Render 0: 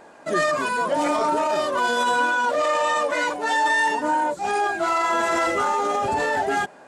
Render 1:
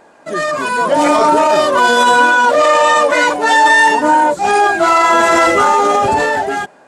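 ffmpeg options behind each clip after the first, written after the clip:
-af "dynaudnorm=f=160:g=9:m=11.5dB,volume=1.5dB"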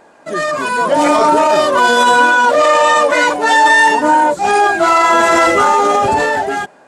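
-af anull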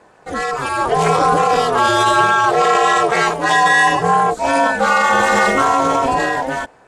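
-af "aeval=exprs='val(0)*sin(2*PI*130*n/s)':c=same,aeval=exprs='0.891*(cos(1*acos(clip(val(0)/0.891,-1,1)))-cos(1*PI/2))+0.0158*(cos(3*acos(clip(val(0)/0.891,-1,1)))-cos(3*PI/2))':c=same"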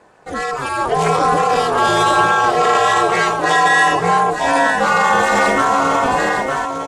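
-af "aecho=1:1:905:0.447,volume=-1dB"

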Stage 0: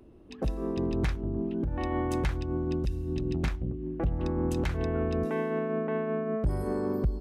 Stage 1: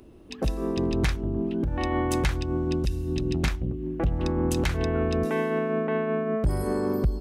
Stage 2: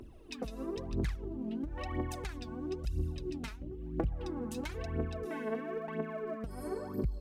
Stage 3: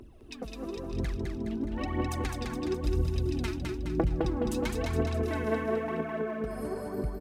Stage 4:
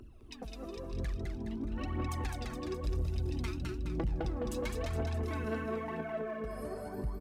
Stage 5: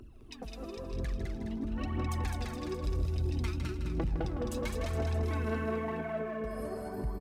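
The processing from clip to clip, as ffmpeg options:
-af "highshelf=f=2.4k:g=8.5,volume=3.5dB"
-af "acompressor=threshold=-31dB:ratio=10,aphaser=in_gain=1:out_gain=1:delay=4.8:decay=0.72:speed=1:type=triangular,volume=-6.5dB"
-af "dynaudnorm=f=400:g=9:m=6dB,aecho=1:1:209|418|627|836|1045|1254|1463:0.668|0.348|0.181|0.094|0.0489|0.0254|0.0132"
-af "flanger=delay=0.7:depth=1.1:regen=45:speed=0.54:shape=sinusoidal,asoftclip=type=tanh:threshold=-26.5dB"
-af "aecho=1:1:159|318|477|636:0.335|0.107|0.0343|0.011,volume=1dB"

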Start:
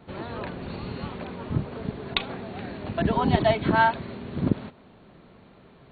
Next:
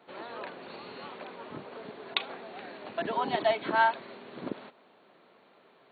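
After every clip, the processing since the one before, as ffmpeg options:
-af "highpass=430,volume=-3.5dB"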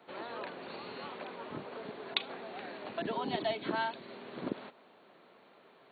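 -filter_complex "[0:a]acrossover=split=430|3000[a][b][c];[b]acompressor=threshold=-40dB:ratio=2.5[d];[a][d][c]amix=inputs=3:normalize=0"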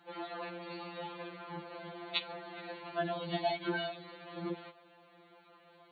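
-af "afftfilt=real='re*2.83*eq(mod(b,8),0)':imag='im*2.83*eq(mod(b,8),0)':win_size=2048:overlap=0.75,volume=2dB"

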